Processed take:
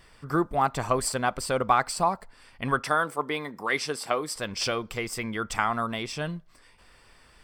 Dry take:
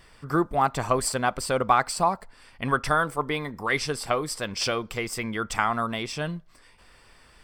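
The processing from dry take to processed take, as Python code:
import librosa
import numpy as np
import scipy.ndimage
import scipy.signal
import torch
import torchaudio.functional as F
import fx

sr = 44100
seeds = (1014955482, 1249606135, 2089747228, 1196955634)

y = fx.highpass(x, sr, hz=200.0, slope=12, at=(2.83, 4.36))
y = y * 10.0 ** (-1.5 / 20.0)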